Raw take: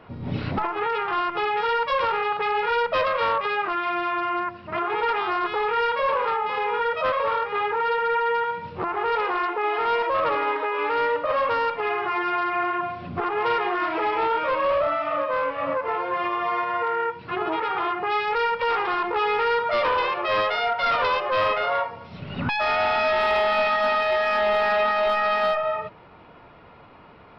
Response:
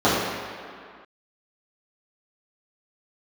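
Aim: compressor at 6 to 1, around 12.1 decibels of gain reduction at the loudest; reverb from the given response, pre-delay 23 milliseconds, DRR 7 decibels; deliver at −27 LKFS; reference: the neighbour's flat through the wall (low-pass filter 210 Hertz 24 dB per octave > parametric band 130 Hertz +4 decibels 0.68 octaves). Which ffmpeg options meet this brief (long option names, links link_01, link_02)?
-filter_complex "[0:a]acompressor=threshold=-33dB:ratio=6,asplit=2[link_01][link_02];[1:a]atrim=start_sample=2205,adelay=23[link_03];[link_02][link_03]afir=irnorm=-1:irlink=0,volume=-30dB[link_04];[link_01][link_04]amix=inputs=2:normalize=0,lowpass=frequency=210:width=0.5412,lowpass=frequency=210:width=1.3066,equalizer=frequency=130:width_type=o:width=0.68:gain=4,volume=20.5dB"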